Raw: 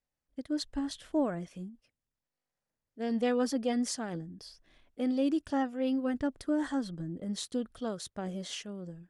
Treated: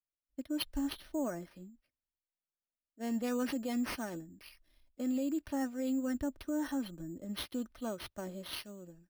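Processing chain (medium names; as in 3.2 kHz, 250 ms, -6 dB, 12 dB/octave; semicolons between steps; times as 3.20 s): comb 3.3 ms, depth 45%; peak limiter -25.5 dBFS, peak gain reduction 8.5 dB; careless resampling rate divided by 6×, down none, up hold; three bands expanded up and down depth 40%; trim -2.5 dB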